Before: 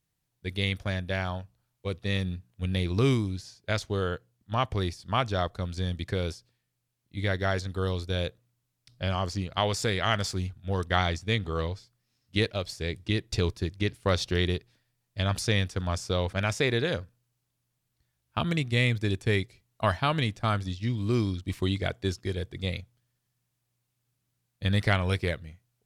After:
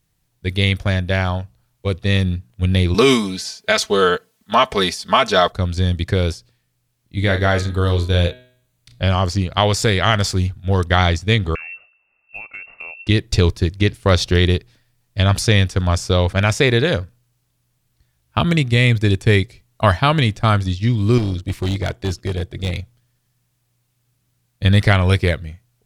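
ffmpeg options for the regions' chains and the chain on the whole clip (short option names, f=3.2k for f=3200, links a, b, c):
-filter_complex "[0:a]asettb=1/sr,asplit=3[a][b][c];[a]atrim=end=2.944[d];[b]atrim=start=2.94:end=5.52,asetpts=PTS-STARTPTS,afade=t=in:d=0.004:c=qsin,afade=t=out:st=2.576:d=0.004:c=qsin,aecho=1:1:4.6:0.84,atrim=end_sample=113778,acontrast=47,highpass=f=630:p=1[e];[c]atrim=start=5.516[f];[d][e]acrossfade=d=0.004:c1=hsin:c2=qsin[g];[g][f]acrossfade=d=0.004:c1=qsin:c2=hsin,asettb=1/sr,asplit=3[h][i][j];[h]atrim=end=7.194[k];[i]atrim=start=7.19:end=9.03,asetpts=PTS-STARTPTS,afade=t=in:d=0.004:c=qsin,afade=t=out:st=1.836:d=0.004:c=qsin,bandreject=f=5.3k:w=7.5,asplit=2[l][m];[m]adelay=35,volume=-7.5dB[n];[l][n]amix=inputs=2:normalize=0,atrim=end_sample=81144,bandreject=f=125.7:t=h:w=4,bandreject=f=251.4:t=h:w=4,bandreject=f=377.1:t=h:w=4,bandreject=f=502.8:t=h:w=4,bandreject=f=628.5:t=h:w=4,bandreject=f=754.2:t=h:w=4,bandreject=f=879.9:t=h:w=4,bandreject=f=1.0056k:t=h:w=4,bandreject=f=1.1313k:t=h:w=4,bandreject=f=1.257k:t=h:w=4,bandreject=f=1.3827k:t=h:w=4,bandreject=f=1.5084k:t=h:w=4,bandreject=f=1.6341k:t=h:w=4,bandreject=f=1.7598k:t=h:w=4,bandreject=f=1.8855k:t=h:w=4,bandreject=f=2.0112k:t=h:w=4,bandreject=f=2.1369k:t=h:w=4,bandreject=f=2.2626k:t=h:w=4,bandreject=f=2.3883k:t=h:w=4,bandreject=f=2.514k:t=h:w=4,bandreject=f=2.6397k:t=h:w=4,bandreject=f=2.7654k:t=h:w=4,bandreject=f=2.8911k:t=h:w=4,bandreject=f=3.0168k:t=h:w=4,bandreject=f=3.1425k:t=h:w=4,bandreject=f=3.2682k:t=h:w=4,bandreject=f=3.3939k:t=h:w=4,bandreject=f=3.5196k:t=h:w=4,bandreject=f=3.6453k:t=h:w=4,bandreject=f=3.771k:t=h:w=4,bandreject=f=3.8967k:t=h:w=4,bandreject=f=4.0224k:t=h:w=4,bandreject=f=4.1481k:t=h:w=4,bandreject=f=4.2738k:t=h:w=4[o];[j]atrim=start=9.026[p];[k][o]acrossfade=d=0.004:c1=hsin:c2=qsin[q];[q][p]acrossfade=d=0.004:c1=qsin:c2=hsin,asettb=1/sr,asplit=3[r][s][t];[r]atrim=end=11.554[u];[s]atrim=start=11.55:end=13.07,asetpts=PTS-STARTPTS,afade=t=in:d=0.004:c=qsin,afade=t=out:st=1.516:d=0.004:c=qsin,lowpass=f=2.4k:t=q:w=0.5098,lowpass=f=2.4k:t=q:w=0.6013,lowpass=f=2.4k:t=q:w=0.9,lowpass=f=2.4k:t=q:w=2.563,afreqshift=-2800,aecho=1:1:1.5:0.39,atrim=end_sample=67032,acompressor=threshold=-40dB:ratio=10:attack=3.2:release=140:knee=1:detection=peak[v];[t]atrim=start=13.066[w];[u][v]acrossfade=d=0.004:c1=hsin:c2=qsin[x];[x][w]acrossfade=d=0.004:c1=qsin:c2=hsin,asettb=1/sr,asplit=3[y][z][aa];[y]atrim=end=21.184[ab];[z]atrim=start=21.18:end=22.77,asetpts=PTS-STARTPTS,afade=t=in:d=0.004:c=qsin,afade=t=out:st=1.586:d=0.004:c=qsin,tremolo=f=240:d=0.571,volume=27.5dB,asoftclip=hard,volume=-27.5dB[ac];[aa]atrim=start=22.766[ad];[ab][ac]acrossfade=d=0.004:c1=hsin:c2=qsin[ae];[ae][ad]acrossfade=d=0.004:c1=qsin:c2=hsin,lowshelf=f=62:g=8.5,alimiter=level_in=11.5dB:limit=-1dB:release=50:level=0:latency=1,volume=-1dB"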